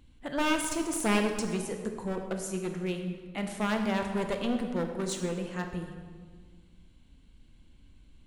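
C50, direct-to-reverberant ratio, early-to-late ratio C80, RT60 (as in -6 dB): 6.0 dB, 4.5 dB, 7.5 dB, 1.6 s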